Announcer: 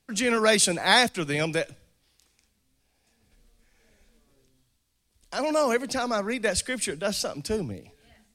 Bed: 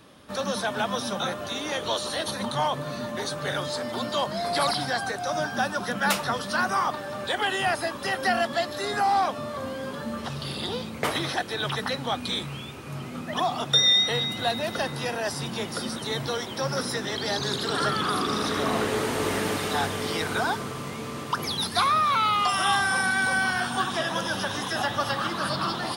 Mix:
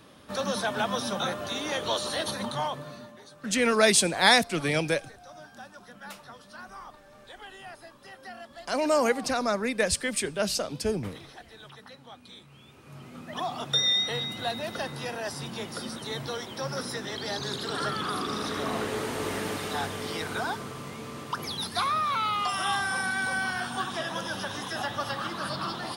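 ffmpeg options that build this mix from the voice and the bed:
-filter_complex "[0:a]adelay=3350,volume=0dB[a];[1:a]volume=13.5dB,afade=t=out:st=2.25:d=0.94:silence=0.11885,afade=t=in:st=12.47:d=1.19:silence=0.188365[b];[a][b]amix=inputs=2:normalize=0"

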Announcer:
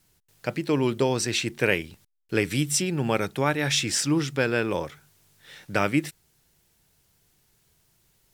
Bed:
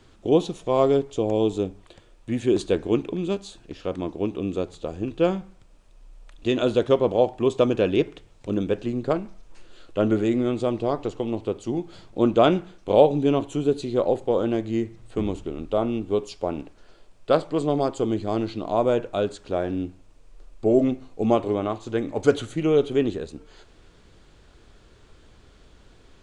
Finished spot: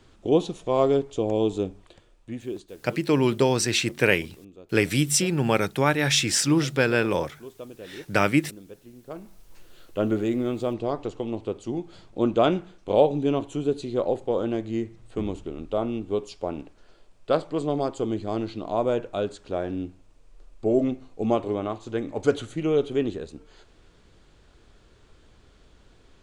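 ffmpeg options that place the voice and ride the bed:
-filter_complex "[0:a]adelay=2400,volume=2.5dB[a];[1:a]volume=16dB,afade=t=out:st=1.76:d=0.93:silence=0.112202,afade=t=in:st=9.06:d=0.43:silence=0.133352[b];[a][b]amix=inputs=2:normalize=0"

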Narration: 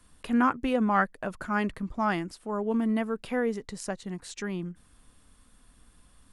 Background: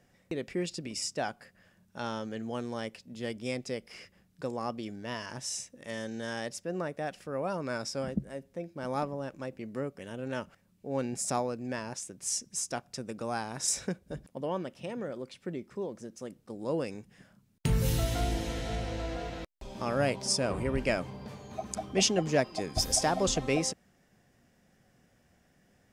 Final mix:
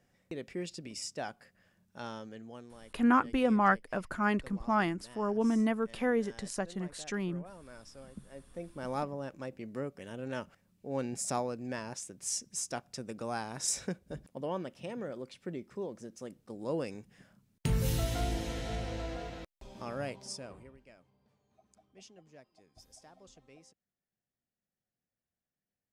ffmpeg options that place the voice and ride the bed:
-filter_complex "[0:a]adelay=2700,volume=-1.5dB[a];[1:a]volume=9dB,afade=t=out:st=2:d=0.76:silence=0.266073,afade=t=in:st=8.16:d=0.53:silence=0.188365,afade=t=out:st=18.97:d=1.81:silence=0.0446684[b];[a][b]amix=inputs=2:normalize=0"

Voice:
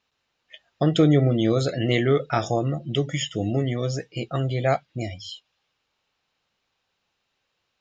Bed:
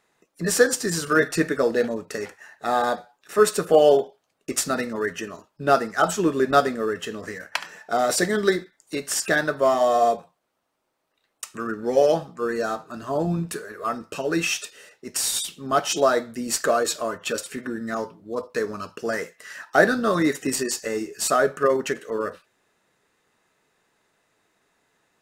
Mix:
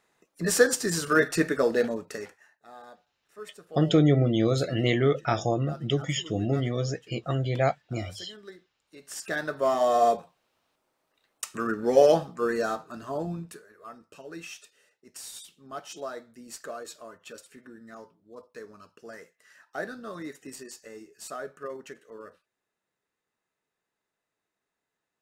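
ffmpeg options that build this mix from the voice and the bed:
-filter_complex "[0:a]adelay=2950,volume=-2.5dB[a];[1:a]volume=23dB,afade=t=out:st=1.88:d=0.74:silence=0.0707946,afade=t=in:st=8.91:d=1.48:silence=0.0530884,afade=t=out:st=12.29:d=1.36:silence=0.133352[b];[a][b]amix=inputs=2:normalize=0"

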